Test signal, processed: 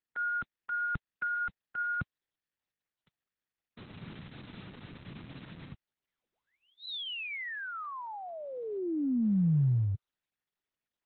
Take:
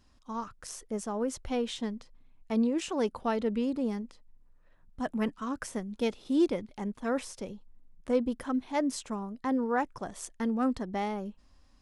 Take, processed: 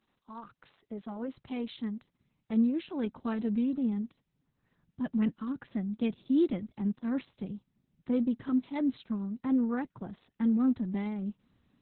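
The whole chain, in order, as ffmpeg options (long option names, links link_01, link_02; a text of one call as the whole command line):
ffmpeg -i in.wav -af "asubboost=boost=6.5:cutoff=230,highpass=frequency=120:width=0.5412,highpass=frequency=120:width=1.3066,volume=-5.5dB" -ar 48000 -c:a libopus -b:a 6k out.opus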